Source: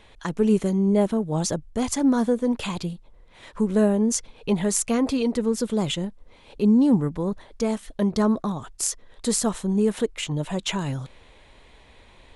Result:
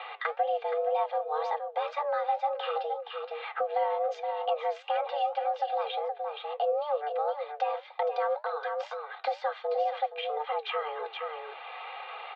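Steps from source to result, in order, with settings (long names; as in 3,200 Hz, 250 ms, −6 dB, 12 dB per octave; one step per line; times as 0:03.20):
in parallel at +2 dB: downward compressor, threshold −31 dBFS, peak gain reduction 15.5 dB
on the sum: single-sideband voice off tune +300 Hz 210–3,300 Hz
comb filter 2.5 ms, depth 81%
flanger 2 Hz, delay 6.8 ms, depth 3.9 ms, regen +74%
on a send: single-tap delay 470 ms −9.5 dB
on the sum: multiband upward and downward compressor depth 70%
level −6 dB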